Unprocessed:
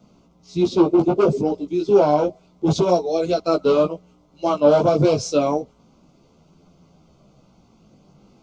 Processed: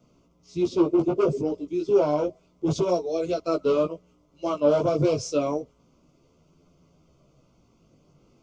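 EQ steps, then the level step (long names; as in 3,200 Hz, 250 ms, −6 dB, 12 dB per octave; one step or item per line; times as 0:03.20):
thirty-one-band graphic EQ 200 Hz −9 dB, 800 Hz −9 dB, 1,600 Hz −4 dB, 4,000 Hz −7 dB
−4.5 dB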